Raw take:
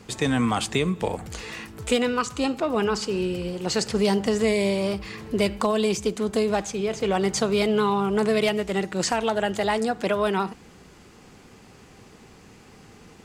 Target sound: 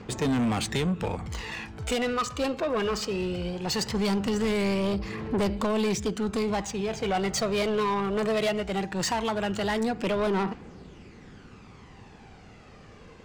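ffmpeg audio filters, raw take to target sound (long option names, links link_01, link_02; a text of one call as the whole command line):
ffmpeg -i in.wav -af "adynamicsmooth=sensitivity=7.5:basefreq=4700,aphaser=in_gain=1:out_gain=1:delay=1.9:decay=0.44:speed=0.19:type=triangular,asoftclip=type=tanh:threshold=-21.5dB" out.wav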